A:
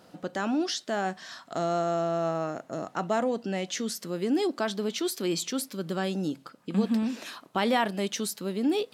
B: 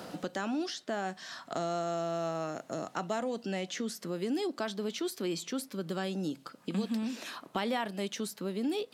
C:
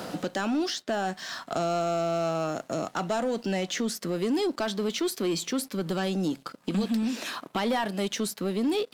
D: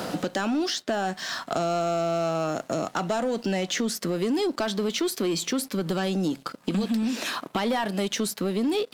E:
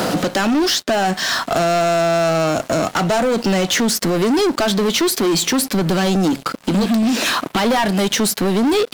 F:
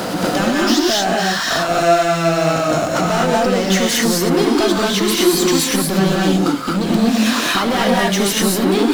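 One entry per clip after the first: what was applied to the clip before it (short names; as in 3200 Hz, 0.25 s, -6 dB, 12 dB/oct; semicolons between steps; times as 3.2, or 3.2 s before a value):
three-band squash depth 70%; gain -6 dB
sample leveller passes 2
compressor 2.5:1, threshold -29 dBFS, peak gain reduction 4.5 dB; gain +5 dB
sample leveller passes 3; gain +3.5 dB
non-linear reverb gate 0.27 s rising, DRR -4 dB; gain -3.5 dB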